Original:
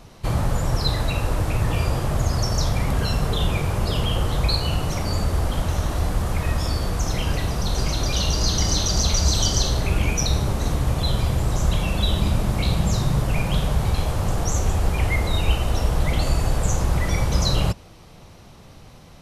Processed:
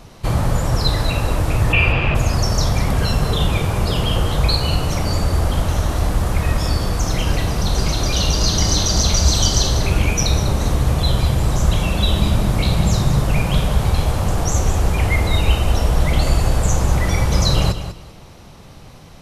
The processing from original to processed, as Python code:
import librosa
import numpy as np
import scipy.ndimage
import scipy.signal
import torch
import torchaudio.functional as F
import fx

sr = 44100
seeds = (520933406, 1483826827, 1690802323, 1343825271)

y = fx.lowpass_res(x, sr, hz=2600.0, q=11.0, at=(1.72, 2.14), fade=0.02)
y = fx.echo_feedback(y, sr, ms=196, feedback_pct=21, wet_db=-11.0)
y = F.gain(torch.from_numpy(y), 4.0).numpy()